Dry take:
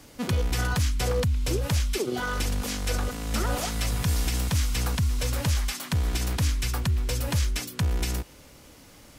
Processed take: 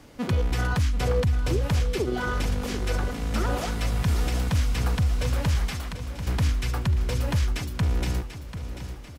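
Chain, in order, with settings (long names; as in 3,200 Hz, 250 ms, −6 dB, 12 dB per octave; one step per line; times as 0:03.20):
high-shelf EQ 4,200 Hz −11 dB
0:05.78–0:06.27: downward compressor, threshold −38 dBFS, peak gain reduction 15.5 dB
on a send: repeating echo 740 ms, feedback 53%, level −11 dB
on the sum: level +1.5 dB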